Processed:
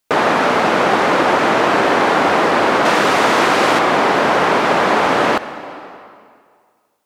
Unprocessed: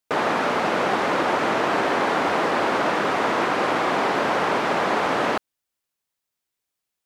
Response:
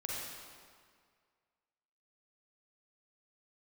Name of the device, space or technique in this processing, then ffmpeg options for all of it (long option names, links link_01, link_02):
ducked reverb: -filter_complex "[0:a]asplit=3[link_01][link_02][link_03];[1:a]atrim=start_sample=2205[link_04];[link_02][link_04]afir=irnorm=-1:irlink=0[link_05];[link_03]apad=whole_len=311248[link_06];[link_05][link_06]sidechaincompress=threshold=-28dB:ratio=4:attack=16:release=690,volume=-5dB[link_07];[link_01][link_07]amix=inputs=2:normalize=0,asettb=1/sr,asplit=3[link_08][link_09][link_10];[link_08]atrim=end=2.854[link_11];[link_09]atrim=start=2.85:end=3.79,asetpts=PTS-STARTPTS,afade=type=in:duration=0.004:curve=qsin,afade=type=out:start_time=0.936:duration=0.004:curve=qsin,highshelf=frequency=3400:gain=8[link_12];[link_10]atrim=start=3.786[link_13];[link_11][link_12]acrossfade=duration=0.004:curve1=hsin:curve2=qsin[link_14];[link_14][link_13]acrossfade=duration=0.004:curve1=qsin:curve2=hsin,volume=6.5dB"